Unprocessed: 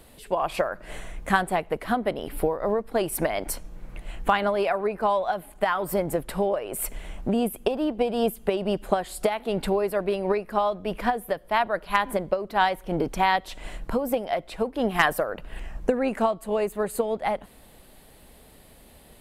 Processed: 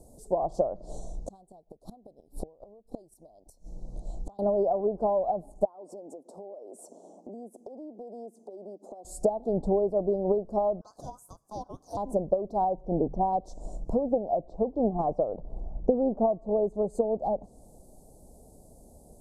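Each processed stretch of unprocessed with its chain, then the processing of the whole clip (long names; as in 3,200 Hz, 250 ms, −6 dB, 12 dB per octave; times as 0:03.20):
0:00.76–0:04.39: parametric band 3,900 Hz +14 dB 0.69 octaves + gate with flip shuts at −20 dBFS, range −28 dB
0:05.65–0:09.05: Butterworth high-pass 230 Hz + high-frequency loss of the air 77 metres + downward compressor, threshold −40 dBFS
0:10.81–0:11.97: downward compressor 2.5 to 1, threshold −24 dBFS + ring modulation 1,700 Hz
0:12.64–0:13.33: low-pass filter 2,400 Hz + mains-hum notches 50/100/150/200 Hz
0:13.98–0:16.64: low-pass filter 2,600 Hz + notch filter 1,500 Hz, Q 20
whole clip: Chebyshev band-stop filter 730–6,100 Hz, order 3; treble cut that deepens with the level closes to 2,000 Hz, closed at −23 dBFS; low-pass filter 9,600 Hz 12 dB per octave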